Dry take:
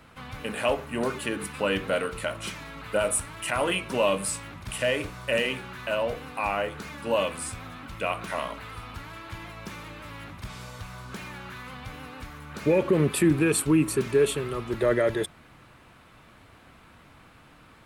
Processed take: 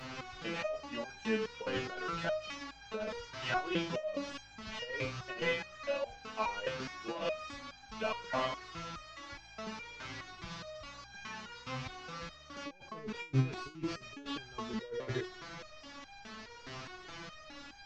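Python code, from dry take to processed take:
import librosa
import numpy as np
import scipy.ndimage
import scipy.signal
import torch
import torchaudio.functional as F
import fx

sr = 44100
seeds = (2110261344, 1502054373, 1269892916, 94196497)

y = fx.delta_mod(x, sr, bps=32000, step_db=-37.0)
y = fx.over_compress(y, sr, threshold_db=-27.0, ratio=-0.5)
y = fx.resonator_held(y, sr, hz=4.8, low_hz=130.0, high_hz=800.0)
y = y * 10.0 ** (6.0 / 20.0)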